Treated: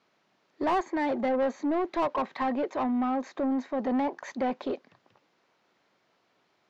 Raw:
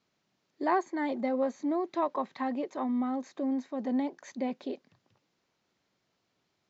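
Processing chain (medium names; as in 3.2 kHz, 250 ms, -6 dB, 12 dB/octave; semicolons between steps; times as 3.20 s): 3.90–4.62 s: dynamic bell 980 Hz, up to +6 dB, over -54 dBFS, Q 1.8; overdrive pedal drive 22 dB, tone 1.4 kHz, clips at -15.5 dBFS; trim -2.5 dB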